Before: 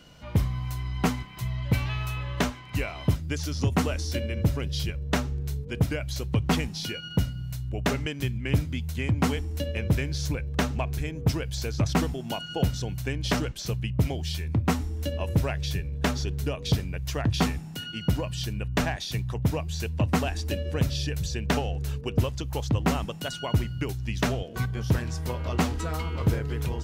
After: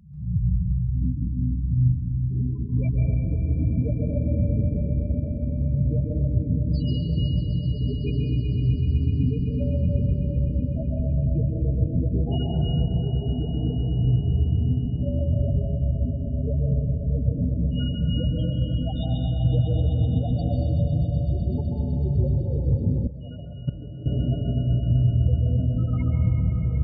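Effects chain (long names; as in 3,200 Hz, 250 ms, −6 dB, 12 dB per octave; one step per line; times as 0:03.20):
peak hold with a rise ahead of every peak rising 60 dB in 0.61 s
brickwall limiter −16 dBFS, peak gain reduction 5.5 dB
spectral peaks only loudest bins 4
echo that builds up and dies away 126 ms, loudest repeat 5, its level −12.5 dB
convolution reverb RT60 2.3 s, pre-delay 137 ms, DRR −1 dB
0:23.07–0:24.06: output level in coarse steps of 18 dB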